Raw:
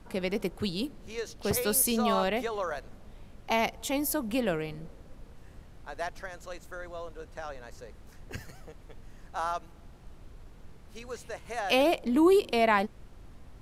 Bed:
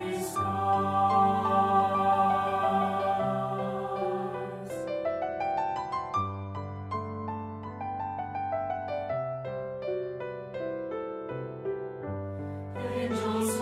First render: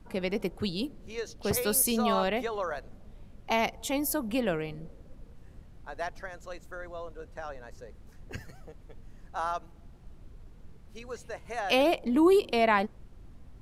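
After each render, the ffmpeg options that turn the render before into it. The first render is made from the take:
-af "afftdn=nr=6:nf=-51"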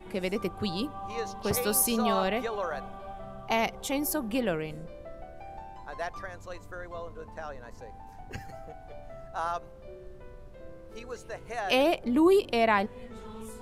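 -filter_complex "[1:a]volume=-15dB[a];[0:a][a]amix=inputs=2:normalize=0"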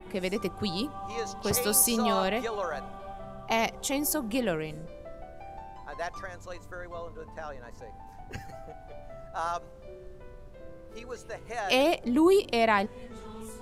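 -af "adynamicequalizer=threshold=0.00282:dfrequency=6900:dqfactor=0.95:tfrequency=6900:tqfactor=0.95:attack=5:release=100:ratio=0.375:range=3:mode=boostabove:tftype=bell"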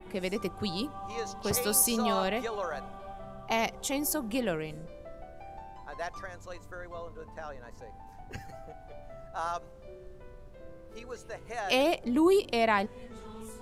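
-af "volume=-2dB"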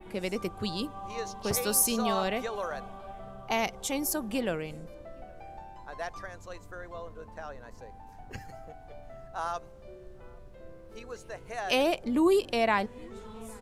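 -filter_complex "[0:a]asplit=2[a][b];[b]adelay=816.3,volume=-27dB,highshelf=f=4k:g=-18.4[c];[a][c]amix=inputs=2:normalize=0"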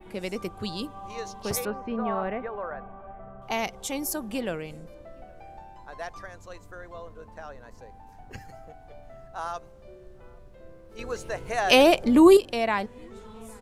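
-filter_complex "[0:a]asettb=1/sr,asplit=3[a][b][c];[a]atrim=end=1.654[d];[b]atrim=start=1.65:end=3.42,asetpts=PTS-STARTPTS,afade=t=in:d=0.004:c=qsin,afade=t=out:st=1.766:d=0.004:c=qsin,lowpass=f=2k:w=0.5412,lowpass=f=2k:w=1.3066[e];[c]atrim=start=3.416[f];[d][e]acrossfade=d=0.004:c1=hsin:c2=qsin[g];[g][f]acrossfade=d=0.004:c1=qsin:c2=hsin,asplit=3[h][i][j];[h]atrim=end=10.992[k];[i]atrim=start=10.988:end=12.372,asetpts=PTS-STARTPTS,volume=9dB[l];[j]atrim=start=12.368[m];[k][l]acrossfade=d=0.004:c1=hsin:c2=hsin[n];[n][m]acrossfade=d=0.004:c1=hsin:c2=hsin"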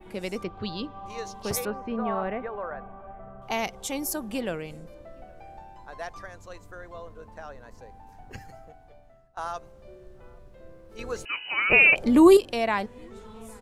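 -filter_complex "[0:a]asettb=1/sr,asplit=3[a][b][c];[a]atrim=end=0.434[d];[b]atrim=start=0.43:end=1.06,asetpts=PTS-STARTPTS,afade=t=in:d=0.004:c=qsin,afade=t=out:st=0.626:d=0.004:c=qsin,lowpass=f=4.6k:w=0.5412,lowpass=f=4.6k:w=1.3066[e];[c]atrim=start=1.056[f];[d][e]acrossfade=d=0.004:c1=hsin:c2=qsin[g];[g][f]acrossfade=d=0.004:c1=qsin:c2=hsin,asettb=1/sr,asplit=3[h][i][j];[h]atrim=end=11.254[k];[i]atrim=start=11.25:end=11.96,asetpts=PTS-STARTPTS,afade=t=in:d=0.004:c=qsin,afade=t=out:st=0.706:d=0.004:c=qsin,lowpass=f=2.6k:t=q:w=0.5098,lowpass=f=2.6k:t=q:w=0.6013,lowpass=f=2.6k:t=q:w=0.9,lowpass=f=2.6k:t=q:w=2.563,afreqshift=-3000[l];[j]atrim=start=11.956[m];[k][l]acrossfade=d=0.004:c1=hsin:c2=qsin[n];[n][m]acrossfade=d=0.004:c1=qsin:c2=hsin,asplit=2[o][p];[o]atrim=end=9.37,asetpts=PTS-STARTPTS,afade=t=out:st=8.43:d=0.94:silence=0.0891251[q];[p]atrim=start=9.37,asetpts=PTS-STARTPTS,afade=t=in:d=0.004:c=hsin:silence=0.0891251[r];[q][r]concat=n=2:v=0:a=1"

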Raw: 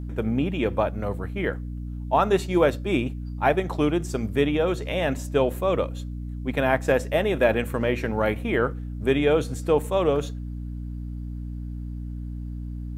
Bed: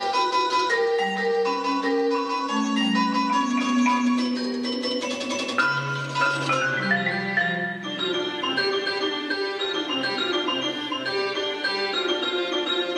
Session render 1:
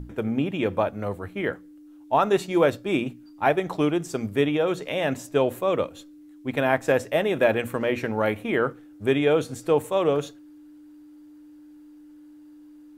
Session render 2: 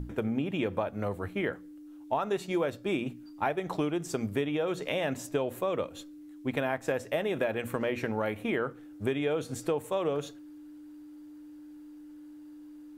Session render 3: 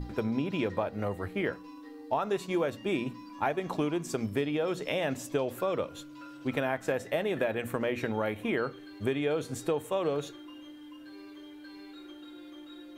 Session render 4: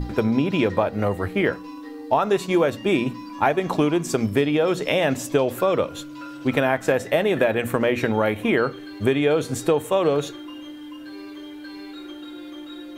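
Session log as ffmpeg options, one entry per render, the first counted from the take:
-af "bandreject=f=60:t=h:w=6,bandreject=f=120:t=h:w=6,bandreject=f=180:t=h:w=6,bandreject=f=240:t=h:w=6"
-af "acompressor=threshold=-27dB:ratio=5"
-filter_complex "[1:a]volume=-28.5dB[a];[0:a][a]amix=inputs=2:normalize=0"
-af "volume=10dB"

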